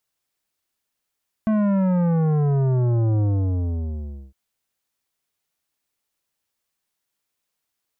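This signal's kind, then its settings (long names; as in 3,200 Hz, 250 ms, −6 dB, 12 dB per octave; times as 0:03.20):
bass drop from 220 Hz, over 2.86 s, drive 12 dB, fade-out 1.12 s, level −18 dB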